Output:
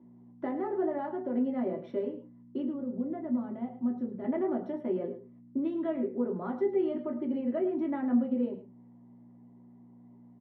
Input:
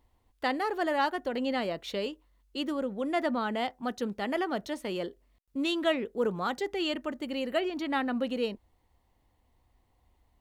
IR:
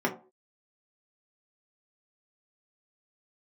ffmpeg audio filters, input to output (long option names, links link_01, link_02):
-filter_complex "[0:a]acompressor=threshold=-42dB:ratio=2.5,aeval=exprs='val(0)+0.00126*(sin(2*PI*60*n/s)+sin(2*PI*2*60*n/s)/2+sin(2*PI*3*60*n/s)/3+sin(2*PI*4*60*n/s)/4+sin(2*PI*5*60*n/s)/5)':channel_layout=same,asetnsamples=nb_out_samples=441:pad=0,asendcmd='2.67 bandpass f 120;4.24 bandpass f 320',bandpass=frequency=290:width_type=q:width=0.54:csg=0,aecho=1:1:107:0.224[link_01];[1:a]atrim=start_sample=2205,afade=type=out:start_time=0.15:duration=0.01,atrim=end_sample=7056[link_02];[link_01][link_02]afir=irnorm=-1:irlink=0,volume=-5dB"